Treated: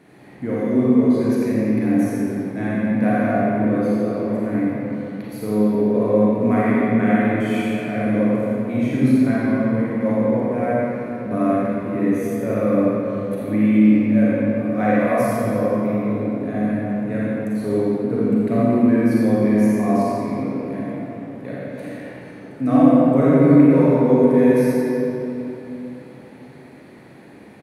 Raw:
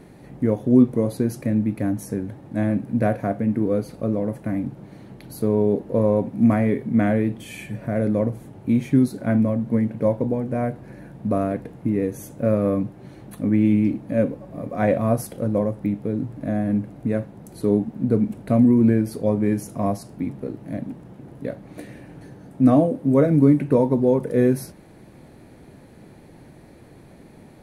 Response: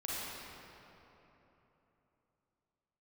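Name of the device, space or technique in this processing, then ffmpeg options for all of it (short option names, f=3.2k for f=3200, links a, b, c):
PA in a hall: -filter_complex "[0:a]asettb=1/sr,asplit=3[a][b][c];[a]atrim=end=0.834[d];[b]atrim=start=0.83:end=1.32,asetpts=PTS-STARTPTS,afade=t=in:d=0.004:c=qsin,afade=t=out:st=0.486:d=0.004:c=qsin,lowpass=7.7k[e];[c]atrim=start=1.316[f];[d][e]acrossfade=d=0.004:c1=hsin:c2=qsin[g];[g][f]acrossfade=d=0.004:c1=qsin:c2=hsin,highpass=130,equalizer=f=2.1k:t=o:w=1.7:g=6.5,aecho=1:1:85:0.422[h];[1:a]atrim=start_sample=2205[i];[h][i]afir=irnorm=-1:irlink=0,volume=-2dB"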